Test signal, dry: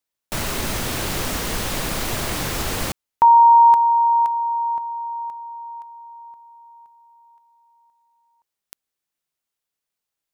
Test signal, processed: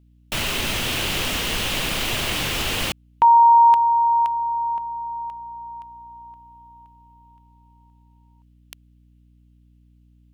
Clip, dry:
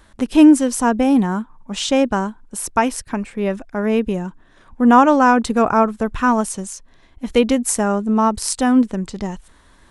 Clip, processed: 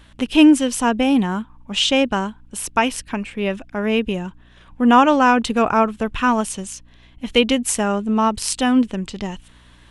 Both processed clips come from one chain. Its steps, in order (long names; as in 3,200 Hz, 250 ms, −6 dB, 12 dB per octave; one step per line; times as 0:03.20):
parametric band 2,900 Hz +11.5 dB 0.82 octaves
mains hum 60 Hz, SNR 32 dB
level −2 dB